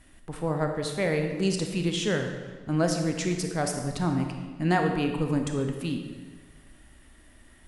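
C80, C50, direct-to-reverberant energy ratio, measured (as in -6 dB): 7.0 dB, 5.5 dB, 4.0 dB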